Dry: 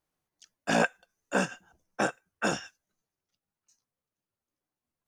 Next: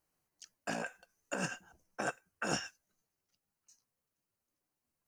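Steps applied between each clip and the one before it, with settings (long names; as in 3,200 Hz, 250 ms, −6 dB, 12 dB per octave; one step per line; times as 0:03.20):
high-shelf EQ 5,800 Hz +4.5 dB
notch filter 3,500 Hz, Q 6.9
compressor whose output falls as the input rises −31 dBFS, ratio −1
level −4.5 dB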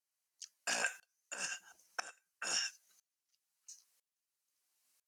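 brickwall limiter −26.5 dBFS, peak gain reduction 6 dB
resonant band-pass 6,800 Hz, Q 0.5
tremolo with a ramp in dB swelling 1 Hz, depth 23 dB
level +17.5 dB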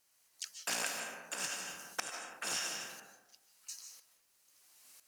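comb and all-pass reverb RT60 0.96 s, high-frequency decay 0.4×, pre-delay 110 ms, DRR 7 dB
every bin compressed towards the loudest bin 2 to 1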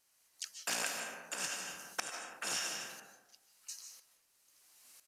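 downsampling to 32,000 Hz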